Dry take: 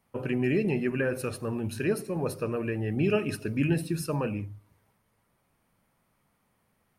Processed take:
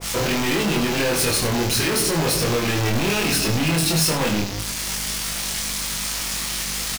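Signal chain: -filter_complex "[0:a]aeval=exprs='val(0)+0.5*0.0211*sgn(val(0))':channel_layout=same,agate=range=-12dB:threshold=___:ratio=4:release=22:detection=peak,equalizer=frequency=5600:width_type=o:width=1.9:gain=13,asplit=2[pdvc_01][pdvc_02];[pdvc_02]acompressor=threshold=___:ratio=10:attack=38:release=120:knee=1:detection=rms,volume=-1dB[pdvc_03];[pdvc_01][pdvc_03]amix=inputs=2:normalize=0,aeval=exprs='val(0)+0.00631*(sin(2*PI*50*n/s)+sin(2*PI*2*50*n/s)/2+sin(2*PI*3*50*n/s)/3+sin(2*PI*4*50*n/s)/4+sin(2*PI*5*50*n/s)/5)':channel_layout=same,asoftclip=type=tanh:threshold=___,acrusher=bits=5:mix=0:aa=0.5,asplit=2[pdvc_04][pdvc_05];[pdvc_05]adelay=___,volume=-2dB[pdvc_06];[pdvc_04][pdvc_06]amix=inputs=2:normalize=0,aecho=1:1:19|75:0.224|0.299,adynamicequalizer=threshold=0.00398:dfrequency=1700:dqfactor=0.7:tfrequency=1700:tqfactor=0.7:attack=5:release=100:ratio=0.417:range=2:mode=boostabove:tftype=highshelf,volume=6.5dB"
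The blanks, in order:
-37dB, -36dB, -28.5dB, 25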